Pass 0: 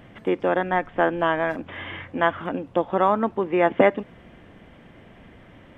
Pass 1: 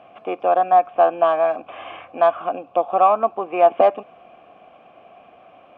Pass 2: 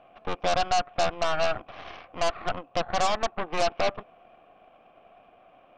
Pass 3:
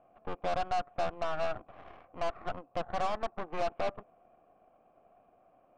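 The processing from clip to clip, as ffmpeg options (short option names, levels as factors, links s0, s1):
-filter_complex "[0:a]acontrast=79,asplit=3[s0][s1][s2];[s0]bandpass=f=730:t=q:w=8,volume=1[s3];[s1]bandpass=f=1090:t=q:w=8,volume=0.501[s4];[s2]bandpass=f=2440:t=q:w=8,volume=0.355[s5];[s3][s4][s5]amix=inputs=3:normalize=0,volume=2.24"
-af "alimiter=limit=0.355:level=0:latency=1:release=230,aeval=exprs='0.355*(cos(1*acos(clip(val(0)/0.355,-1,1)))-cos(1*PI/2))+0.1*(cos(8*acos(clip(val(0)/0.355,-1,1)))-cos(8*PI/2))':c=same,volume=0.398"
-af "adynamicsmooth=sensitivity=1:basefreq=1400,volume=0.473"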